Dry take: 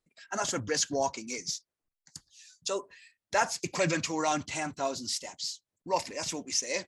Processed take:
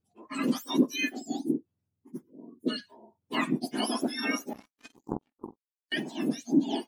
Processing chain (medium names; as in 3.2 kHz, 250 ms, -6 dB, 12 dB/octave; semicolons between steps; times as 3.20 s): spectrum inverted on a logarithmic axis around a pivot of 1.3 kHz; 4.53–5.92 s: power-law waveshaper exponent 3